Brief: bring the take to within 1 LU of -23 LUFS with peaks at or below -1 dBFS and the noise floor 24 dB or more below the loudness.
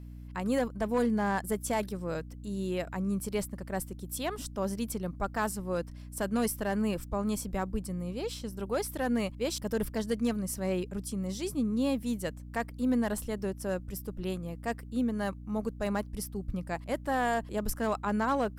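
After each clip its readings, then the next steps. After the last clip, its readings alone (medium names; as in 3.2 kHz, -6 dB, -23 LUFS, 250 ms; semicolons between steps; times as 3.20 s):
clipped samples 0.3%; clipping level -21.0 dBFS; hum 60 Hz; highest harmonic 300 Hz; hum level -42 dBFS; loudness -33.0 LUFS; peak level -21.0 dBFS; loudness target -23.0 LUFS
-> clip repair -21 dBFS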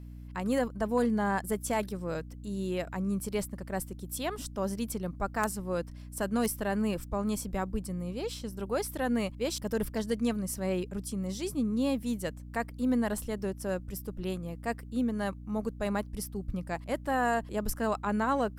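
clipped samples 0.0%; hum 60 Hz; highest harmonic 300 Hz; hum level -42 dBFS
-> hum notches 60/120/180/240/300 Hz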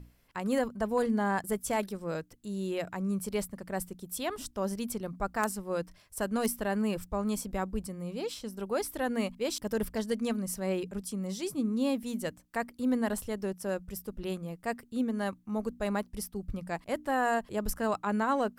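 hum not found; loudness -33.5 LUFS; peak level -12.0 dBFS; loudness target -23.0 LUFS
-> trim +10.5 dB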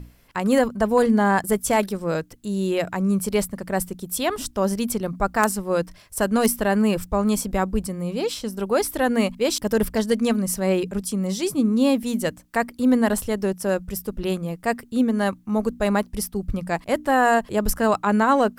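loudness -23.0 LUFS; peak level -1.5 dBFS; noise floor -50 dBFS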